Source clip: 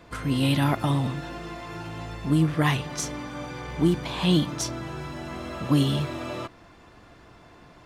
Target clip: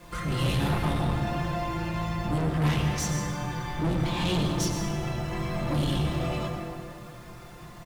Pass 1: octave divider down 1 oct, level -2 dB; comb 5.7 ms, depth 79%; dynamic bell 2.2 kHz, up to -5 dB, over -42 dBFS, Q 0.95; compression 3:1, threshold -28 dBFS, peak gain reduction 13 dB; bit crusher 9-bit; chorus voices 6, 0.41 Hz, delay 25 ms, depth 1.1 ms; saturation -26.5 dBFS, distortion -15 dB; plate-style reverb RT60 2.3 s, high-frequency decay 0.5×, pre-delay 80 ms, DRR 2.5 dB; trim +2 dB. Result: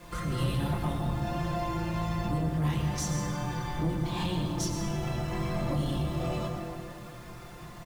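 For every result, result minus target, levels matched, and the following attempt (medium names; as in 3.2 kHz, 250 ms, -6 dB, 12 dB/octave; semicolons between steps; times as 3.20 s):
compression: peak gain reduction +13 dB; 2 kHz band -2.5 dB
octave divider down 1 oct, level -2 dB; comb 5.7 ms, depth 79%; dynamic bell 2.2 kHz, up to -5 dB, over -42 dBFS, Q 0.95; bit crusher 9-bit; chorus voices 6, 0.41 Hz, delay 25 ms, depth 1.1 ms; saturation -26.5 dBFS, distortion -4 dB; plate-style reverb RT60 2.3 s, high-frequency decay 0.5×, pre-delay 80 ms, DRR 2.5 dB; trim +2 dB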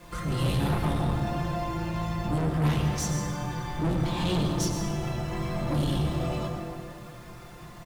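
2 kHz band -3.0 dB
octave divider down 1 oct, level -2 dB; comb 5.7 ms, depth 79%; bit crusher 9-bit; chorus voices 6, 0.41 Hz, delay 25 ms, depth 1.1 ms; saturation -26.5 dBFS, distortion -4 dB; plate-style reverb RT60 2.3 s, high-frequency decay 0.5×, pre-delay 80 ms, DRR 2.5 dB; trim +2 dB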